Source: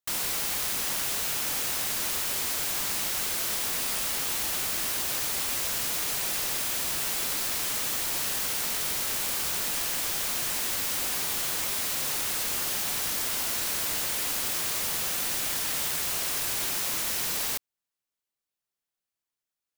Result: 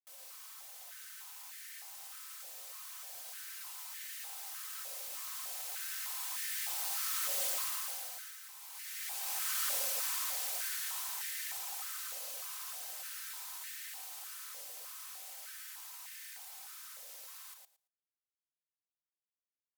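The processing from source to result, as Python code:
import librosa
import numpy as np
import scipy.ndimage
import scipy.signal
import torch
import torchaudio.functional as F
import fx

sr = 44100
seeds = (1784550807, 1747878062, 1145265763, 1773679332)

p1 = fx.doppler_pass(x, sr, speed_mps=24, closest_m=8.3, pass_at_s=8.46)
p2 = fx.high_shelf(p1, sr, hz=3100.0, db=9.0)
p3 = (np.mod(10.0 ** (24.5 / 20.0) * p2 + 1.0, 2.0) - 1.0) / 10.0 ** (24.5 / 20.0)
p4 = p2 + (p3 * 10.0 ** (-12.0 / 20.0))
p5 = fx.over_compress(p4, sr, threshold_db=-31.0, ratio=-0.5)
p6 = p5 + 0.5 * np.pad(p5, (int(3.9 * sr / 1000.0), 0))[:len(p5)]
p7 = fx.echo_feedback(p6, sr, ms=113, feedback_pct=16, wet_db=-4.5)
p8 = fx.filter_held_highpass(p7, sr, hz=3.3, low_hz=570.0, high_hz=1800.0)
y = p8 * 10.0 ** (-8.0 / 20.0)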